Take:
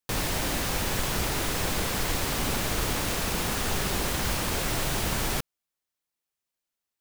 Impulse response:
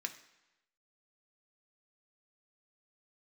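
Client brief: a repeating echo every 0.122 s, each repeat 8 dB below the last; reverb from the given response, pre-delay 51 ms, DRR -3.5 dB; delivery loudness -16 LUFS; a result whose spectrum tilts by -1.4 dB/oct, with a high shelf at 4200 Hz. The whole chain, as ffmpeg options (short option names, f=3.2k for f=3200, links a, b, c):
-filter_complex "[0:a]highshelf=f=4.2k:g=8.5,aecho=1:1:122|244|366|488|610:0.398|0.159|0.0637|0.0255|0.0102,asplit=2[a][b];[1:a]atrim=start_sample=2205,adelay=51[c];[b][c]afir=irnorm=-1:irlink=0,volume=3.5dB[d];[a][d]amix=inputs=2:normalize=0,volume=2dB"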